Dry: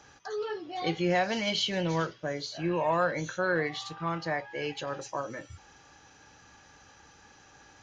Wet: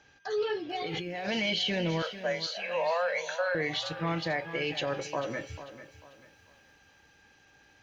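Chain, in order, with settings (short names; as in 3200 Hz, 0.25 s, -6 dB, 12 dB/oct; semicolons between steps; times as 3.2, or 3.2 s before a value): 2.02–3.55 steep high-pass 470 Hz 96 dB/oct; gate -51 dBFS, range -10 dB; EQ curve 640 Hz 0 dB, 1200 Hz -6 dB, 2400 Hz +5 dB, 4500 Hz 0 dB, 7000 Hz -6 dB; limiter -25.5 dBFS, peak gain reduction 10.5 dB; 0.76–1.28 negative-ratio compressor -40 dBFS, ratio -1; whine 1600 Hz -67 dBFS; lo-fi delay 0.444 s, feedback 35%, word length 11-bit, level -13 dB; gain +4 dB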